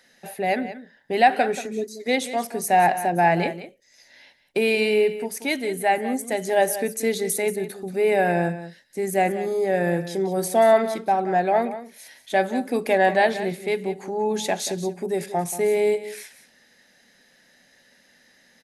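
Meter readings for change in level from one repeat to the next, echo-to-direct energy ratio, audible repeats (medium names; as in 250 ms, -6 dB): no regular repeats, -13.0 dB, 1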